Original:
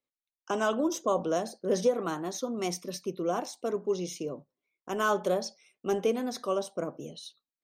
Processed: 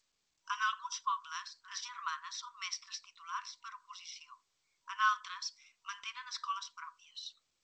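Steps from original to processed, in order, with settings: 2.95–4.98 high shelf 3000 Hz -4 dB; FFT band-pass 960–6000 Hz; G.722 64 kbps 16000 Hz

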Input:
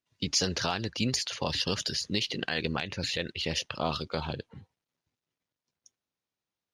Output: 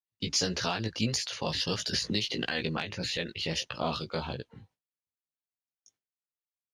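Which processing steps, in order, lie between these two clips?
chorus 1.6 Hz, delay 16 ms, depth 2.7 ms; gate with hold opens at -57 dBFS; 1.93–2.49 three-band squash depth 100%; gain +2 dB

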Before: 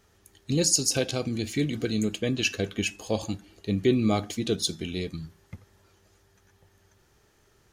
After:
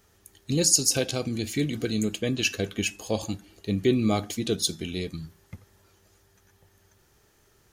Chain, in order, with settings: high shelf 9800 Hz +9 dB

